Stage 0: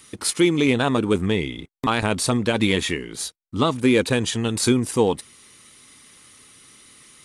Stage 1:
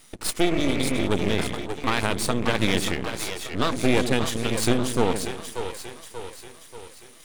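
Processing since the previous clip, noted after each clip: split-band echo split 370 Hz, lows 0.122 s, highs 0.585 s, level -6 dB; spectral repair 0.48–1.01, 400–3000 Hz after; half-wave rectifier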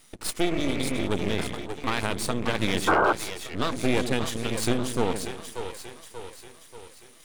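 painted sound noise, 2.87–3.13, 290–1600 Hz -17 dBFS; gain -3.5 dB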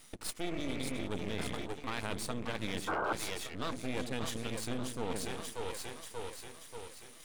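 reverse; compressor 4:1, threshold -32 dBFS, peak gain reduction 13.5 dB; reverse; notch 370 Hz, Q 12; gain -1 dB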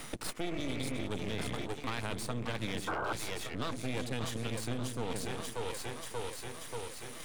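bell 120 Hz +6.5 dB 0.29 oct; three-band squash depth 70%

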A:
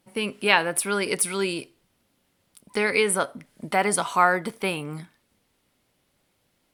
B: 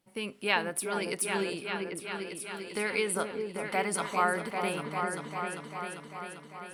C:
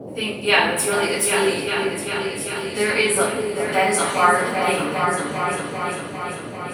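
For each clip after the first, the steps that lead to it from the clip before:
repeats that get brighter 0.396 s, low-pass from 750 Hz, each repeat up 2 oct, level -3 dB; gain -8.5 dB
two-slope reverb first 0.48 s, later 2.6 s, from -18 dB, DRR -9.5 dB; band noise 95–590 Hz -37 dBFS; gain +2 dB

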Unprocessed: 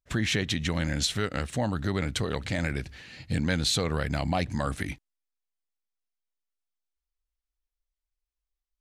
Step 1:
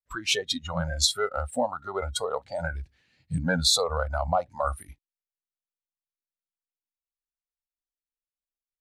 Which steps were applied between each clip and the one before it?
spectral noise reduction 26 dB; gain +5.5 dB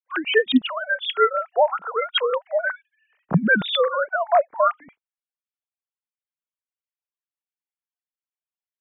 sine-wave speech; gain +6.5 dB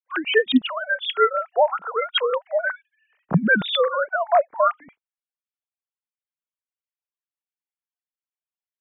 nothing audible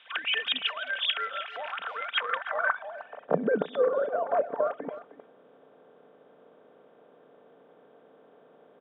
per-bin compression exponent 0.4; speakerphone echo 0.31 s, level -13 dB; band-pass sweep 2800 Hz -> 430 Hz, 2–3.44; gain -4 dB

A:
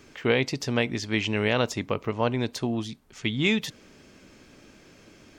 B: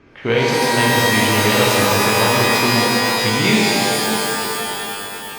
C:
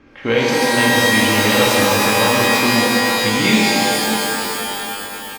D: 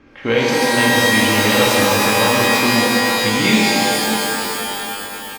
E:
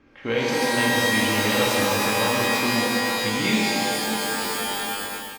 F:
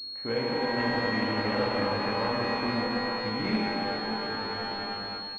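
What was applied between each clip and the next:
low-pass opened by the level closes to 2200 Hz; shimmer reverb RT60 3.4 s, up +12 st, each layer -2 dB, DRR -5 dB; gain +2.5 dB
comb 3.7 ms, depth 42%
nothing audible
AGC gain up to 7.5 dB; gain -8 dB
pulse-width modulation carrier 4300 Hz; gain -5.5 dB

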